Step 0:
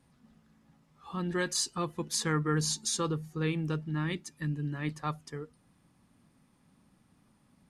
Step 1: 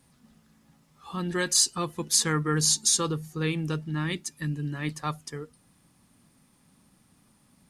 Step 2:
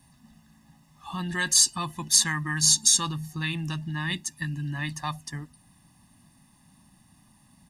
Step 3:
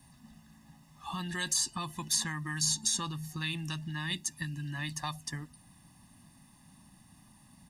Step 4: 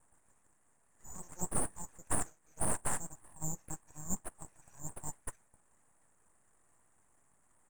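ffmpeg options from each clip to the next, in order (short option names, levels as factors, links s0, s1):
-af "highshelf=f=4000:g=10,volume=1.33"
-filter_complex "[0:a]aecho=1:1:1.1:0.99,acrossover=split=980[s0][s1];[s0]alimiter=level_in=1.33:limit=0.0631:level=0:latency=1,volume=0.75[s2];[s2][s1]amix=inputs=2:normalize=0"
-filter_complex "[0:a]acrossover=split=1100|2900[s0][s1][s2];[s0]acompressor=threshold=0.0141:ratio=4[s3];[s1]acompressor=threshold=0.00708:ratio=4[s4];[s2]acompressor=threshold=0.0316:ratio=4[s5];[s3][s4][s5]amix=inputs=3:normalize=0"
-af "asuperpass=centerf=4100:order=12:qfactor=1.8,aeval=exprs='abs(val(0))':c=same,volume=1.88"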